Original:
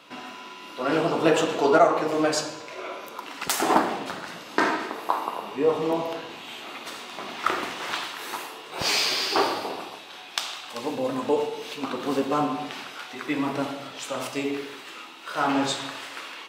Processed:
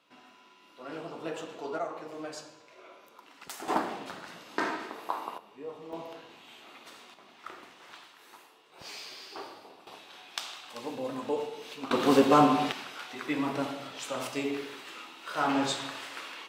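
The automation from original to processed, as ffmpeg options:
-af "asetnsamples=n=441:p=0,asendcmd='3.68 volume volume -8.5dB;5.38 volume volume -19.5dB;5.93 volume volume -13dB;7.14 volume volume -20dB;9.87 volume volume -8dB;11.91 volume volume 4dB;12.72 volume volume -4dB',volume=0.141"

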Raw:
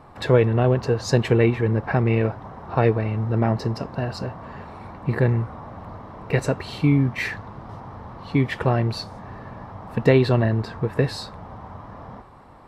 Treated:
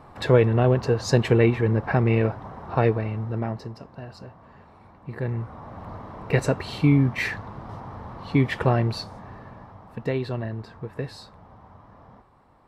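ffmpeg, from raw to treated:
-af "volume=3.98,afade=t=out:st=2.63:d=1.1:silence=0.251189,afade=t=in:st=5.12:d=0.82:silence=0.237137,afade=t=out:st=8.66:d=1.29:silence=0.298538"

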